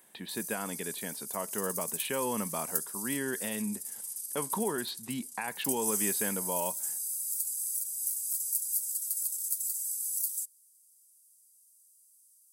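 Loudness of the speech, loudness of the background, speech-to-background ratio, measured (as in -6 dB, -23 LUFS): -36.5 LUFS, -32.5 LUFS, -4.0 dB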